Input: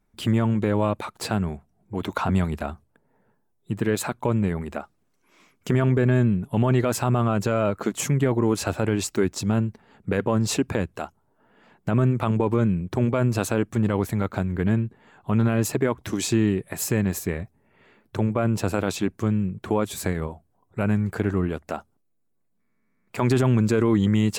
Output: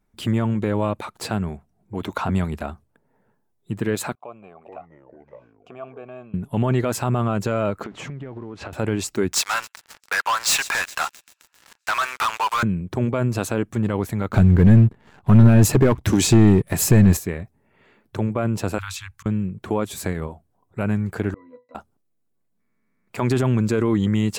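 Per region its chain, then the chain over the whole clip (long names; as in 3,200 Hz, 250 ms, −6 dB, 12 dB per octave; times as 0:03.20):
0:04.15–0:06.34: formant filter a + delay with pitch and tempo change per echo 406 ms, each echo −4 semitones, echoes 2, each echo −6 dB
0:07.84–0:08.73: converter with a step at zero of −38 dBFS + low-pass filter 2,800 Hz + downward compressor 10 to 1, threshold −30 dBFS
0:09.33–0:12.63: inverse Chebyshev high-pass filter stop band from 220 Hz, stop band 70 dB + delay with a high-pass on its return 132 ms, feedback 80%, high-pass 2,500 Hz, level −23 dB + leveller curve on the samples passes 5
0:14.29–0:17.17: leveller curve on the samples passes 2 + low-shelf EQ 170 Hz +11 dB
0:18.78–0:19.26: inverse Chebyshev band-stop filter 170–650 Hz + hum removal 136.4 Hz, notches 6 + volume swells 229 ms
0:21.34–0:21.75: high-pass filter 390 Hz + resonances in every octave B, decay 0.21 s
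whole clip: no processing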